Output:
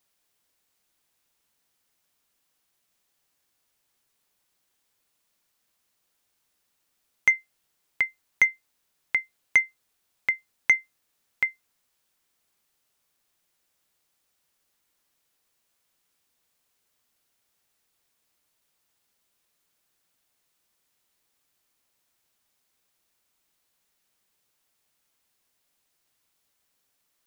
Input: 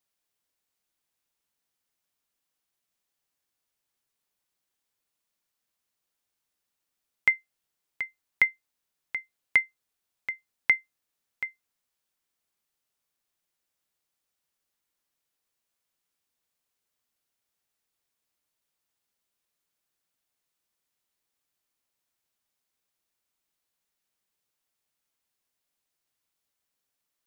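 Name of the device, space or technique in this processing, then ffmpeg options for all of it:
soft clipper into limiter: -af "asoftclip=type=tanh:threshold=-12dB,alimiter=limit=-18.5dB:level=0:latency=1:release=129,volume=8.5dB"

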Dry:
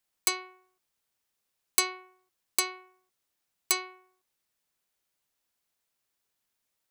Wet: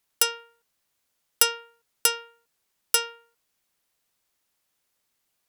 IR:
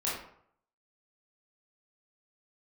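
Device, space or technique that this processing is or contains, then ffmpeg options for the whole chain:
nightcore: -af "asetrate=55566,aresample=44100,volume=6.5dB"

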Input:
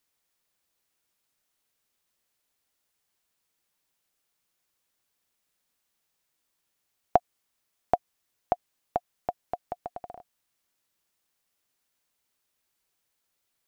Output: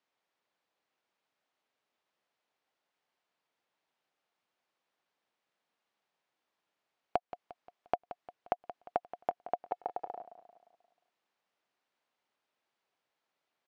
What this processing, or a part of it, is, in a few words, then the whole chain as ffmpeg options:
AM radio: -filter_complex "[0:a]highpass=170,lowpass=3.5k,equalizer=f=740:w=1:g=5.5,acompressor=threshold=-24dB:ratio=10,asoftclip=type=tanh:threshold=-12dB,aecho=1:1:176|352|528|704|880:0.211|0.0993|0.0467|0.0219|0.0103,asettb=1/sr,asplit=3[a][b][c];[a]atrim=end=9.694[d];[b]atrim=start=9.69:end=10.18,asetpts=PTS-STARTPTS,afade=t=in:d=0.004:c=qsin,afade=t=out:st=0.486:d=0.004:c=qsin,aecho=1:1:2.3:0.54,atrim=end_sample=21609[e];[c]atrim=start=10.176[f];[d][e]acrossfade=d=0.004:c1=hsin:c2=qsin[g];[g][f]acrossfade=d=0.004:c1=qsin:c2=hsin,volume=-2dB"

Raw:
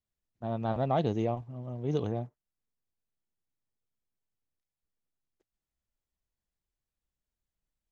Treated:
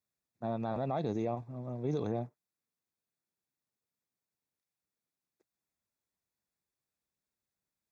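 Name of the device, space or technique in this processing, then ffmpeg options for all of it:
PA system with an anti-feedback notch: -af "highpass=130,asuperstop=centerf=3000:order=8:qfactor=5.3,alimiter=level_in=2dB:limit=-24dB:level=0:latency=1:release=49,volume=-2dB,volume=1dB"

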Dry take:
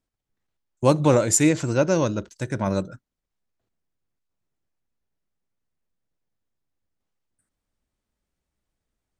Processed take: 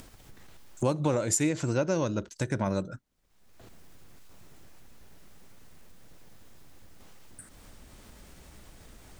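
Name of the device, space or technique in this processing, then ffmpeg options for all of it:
upward and downward compression: -af "acompressor=mode=upward:threshold=-24dB:ratio=2.5,acompressor=threshold=-23dB:ratio=4,volume=-1dB"

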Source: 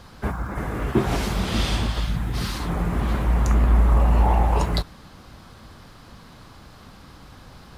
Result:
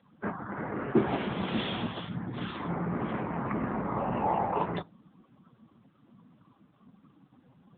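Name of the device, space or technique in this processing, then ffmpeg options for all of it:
mobile call with aggressive noise cancelling: -af "highpass=170,afftdn=nr=18:nf=-39,volume=-2.5dB" -ar 8000 -c:a libopencore_amrnb -b:a 7950

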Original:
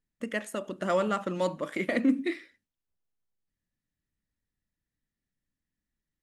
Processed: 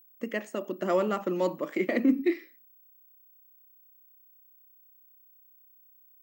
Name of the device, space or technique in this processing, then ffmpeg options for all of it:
old television with a line whistle: -af "highpass=f=170:w=0.5412,highpass=f=170:w=1.3066,equalizer=f=360:t=q:w=4:g=7,equalizer=f=1.5k:t=q:w=4:g=-5,equalizer=f=3.6k:t=q:w=4:g=-8,lowpass=f=6.9k:w=0.5412,lowpass=f=6.9k:w=1.3066,aeval=exprs='val(0)+0.00158*sin(2*PI*15734*n/s)':c=same"

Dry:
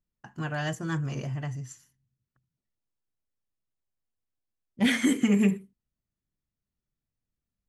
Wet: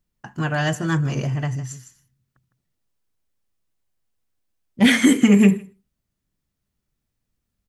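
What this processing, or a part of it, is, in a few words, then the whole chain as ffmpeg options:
ducked delay: -filter_complex "[0:a]asplit=3[a][b][c];[b]adelay=157,volume=-8.5dB[d];[c]apad=whole_len=345946[e];[d][e]sidechaincompress=threshold=-37dB:ratio=16:attack=16:release=743[f];[a][f]amix=inputs=2:normalize=0,volume=9dB"

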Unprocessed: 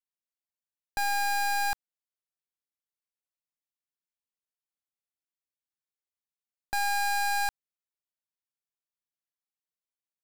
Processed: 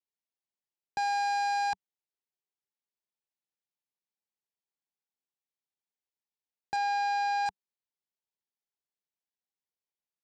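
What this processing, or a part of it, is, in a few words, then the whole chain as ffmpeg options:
car door speaker: -filter_complex "[0:a]highpass=90,equalizer=f=190:t=q:w=4:g=5,equalizer=f=400:t=q:w=4:g=7,equalizer=f=860:t=q:w=4:g=7,equalizer=f=1.3k:t=q:w=4:g=-8,lowpass=f=6.7k:w=0.5412,lowpass=f=6.7k:w=1.3066,asettb=1/sr,asplit=3[a][b][c];[a]atrim=end=6.764[d];[b]atrim=start=6.76:end=7.46,asetpts=PTS-STARTPTS,afade=t=in:d=0.004:c=qsin,afade=t=out:st=0.696:d=0.004:c=qsin,acrossover=split=5800[e][f];[f]acompressor=threshold=-58dB:ratio=4:attack=1:release=60[g];[e][g]amix=inputs=2:normalize=0[h];[c]atrim=start=7.456[i];[d][h]acrossfade=d=0.004:c1=hsin:c2=qsin[j];[j][i]acrossfade=d=0.004:c1=qsin:c2=hsin,volume=-4dB"

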